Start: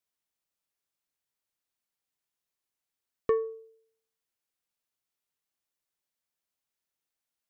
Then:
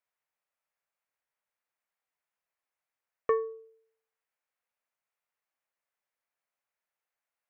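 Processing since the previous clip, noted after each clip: high-order bell 1.1 kHz +12.5 dB 2.7 oct; trim -8.5 dB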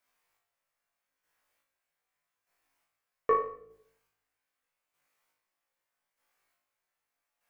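square tremolo 0.81 Hz, depth 60%, duty 30%; on a send: flutter echo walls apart 3.2 m, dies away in 0.46 s; on the sum: simulated room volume 100 m³, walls mixed, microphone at 0.35 m; trim +8 dB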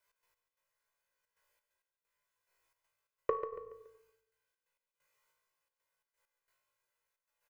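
comb 2 ms, depth 94%; trance gate "x.x..xxxxxx.x" 132 bpm -12 dB; on a send: feedback delay 141 ms, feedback 37%, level -10.5 dB; on the sum: trim -3.5 dB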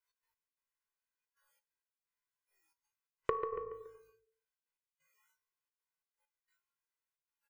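spectral noise reduction 18 dB; peaking EQ 590 Hz -14 dB 0.3 oct; compression 3:1, threshold -39 dBFS, peak gain reduction 9 dB; trim +8 dB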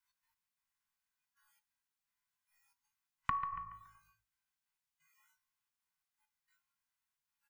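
Chebyshev band-stop 260–730 Hz, order 4; trim +3.5 dB

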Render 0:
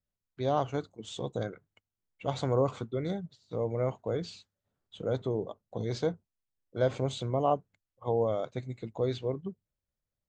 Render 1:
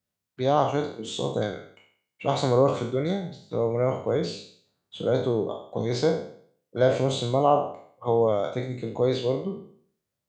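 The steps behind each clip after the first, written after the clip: spectral sustain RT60 0.56 s; high-pass 110 Hz; trim +6 dB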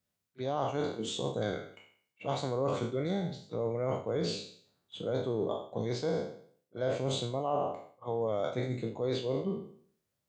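reverse; compression 6:1, threshold -29 dBFS, peak gain reduction 13.5 dB; reverse; reverse echo 36 ms -22.5 dB

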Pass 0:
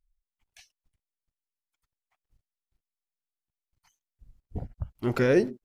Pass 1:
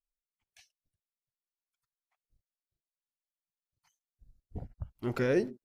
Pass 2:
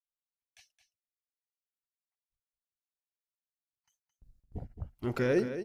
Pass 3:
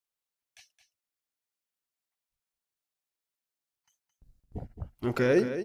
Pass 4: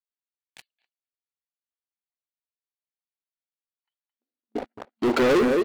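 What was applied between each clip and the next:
spectral noise reduction 15 dB; trim -6 dB
gate with hold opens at -57 dBFS; delay 218 ms -10.5 dB
bass shelf 120 Hz -5 dB; trim +4.5 dB
FFT band-pass 220–4700 Hz; waveshaping leveller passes 5; speakerphone echo 250 ms, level -27 dB; trim -2.5 dB

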